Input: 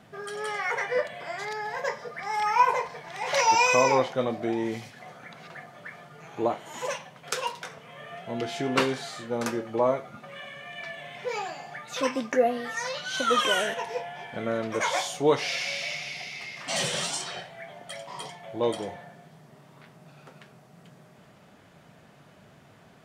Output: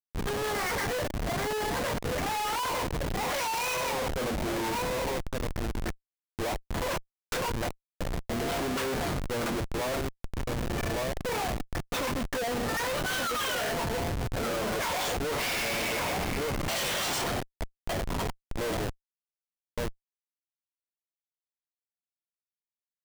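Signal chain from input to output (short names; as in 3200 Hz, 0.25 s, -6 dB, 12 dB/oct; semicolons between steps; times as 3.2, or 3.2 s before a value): HPF 190 Hz 6 dB/oct; low shelf 310 Hz -7.5 dB; sample leveller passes 1; outdoor echo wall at 200 m, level -8 dB; Schmitt trigger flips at -30.5 dBFS; gain -2 dB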